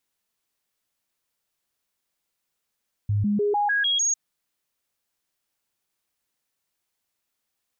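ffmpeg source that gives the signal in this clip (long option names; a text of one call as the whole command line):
ffmpeg -f lavfi -i "aevalsrc='0.106*clip(min(mod(t,0.15),0.15-mod(t,0.15))/0.005,0,1)*sin(2*PI*103*pow(2,floor(t/0.15)/1)*mod(t,0.15))':duration=1.05:sample_rate=44100" out.wav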